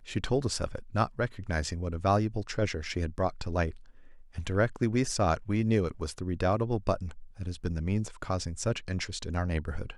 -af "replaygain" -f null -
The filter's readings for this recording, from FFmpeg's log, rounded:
track_gain = +11.2 dB
track_peak = 0.171